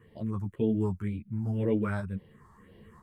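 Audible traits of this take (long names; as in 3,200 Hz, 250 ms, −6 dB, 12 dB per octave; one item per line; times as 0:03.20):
phaser sweep stages 4, 1.9 Hz, lowest notch 470–1,200 Hz
tremolo saw up 1 Hz, depth 45%
a shimmering, thickened sound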